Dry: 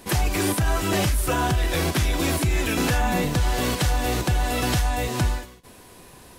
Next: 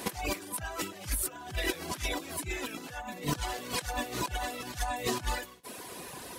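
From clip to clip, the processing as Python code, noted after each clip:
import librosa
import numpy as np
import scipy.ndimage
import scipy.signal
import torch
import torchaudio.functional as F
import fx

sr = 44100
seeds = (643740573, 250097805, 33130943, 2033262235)

y = fx.dereverb_blind(x, sr, rt60_s=0.8)
y = fx.highpass(y, sr, hz=250.0, slope=6)
y = fx.over_compress(y, sr, threshold_db=-34.0, ratio=-0.5)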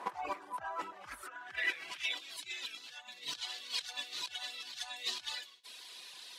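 y = fx.filter_sweep_bandpass(x, sr, from_hz=1000.0, to_hz=3800.0, start_s=0.89, end_s=2.36, q=2.5)
y = y * 10.0 ** (4.0 / 20.0)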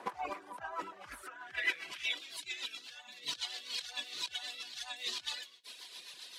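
y = fx.rotary(x, sr, hz=7.5)
y = y * 10.0 ** (3.0 / 20.0)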